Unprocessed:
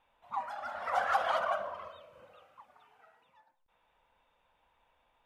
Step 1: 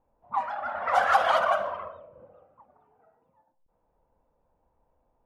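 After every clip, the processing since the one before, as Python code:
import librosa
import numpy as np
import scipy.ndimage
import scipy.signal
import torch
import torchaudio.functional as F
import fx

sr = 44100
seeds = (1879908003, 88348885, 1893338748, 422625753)

y = fx.env_lowpass(x, sr, base_hz=470.0, full_db=-29.0)
y = y * librosa.db_to_amplitude(8.0)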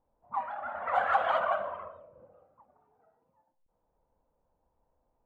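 y = scipy.signal.lfilter(np.full(8, 1.0 / 8), 1.0, x)
y = y * librosa.db_to_amplitude(-4.5)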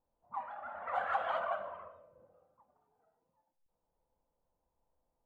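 y = fx.comb_fb(x, sr, f0_hz=170.0, decay_s=0.78, harmonics='all', damping=0.0, mix_pct=60)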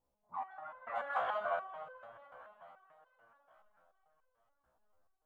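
y = fx.echo_alternate(x, sr, ms=222, hz=1000.0, feedback_pct=75, wet_db=-12)
y = fx.resonator_held(y, sr, hz=6.9, low_hz=64.0, high_hz=510.0)
y = y * librosa.db_to_amplitude(8.5)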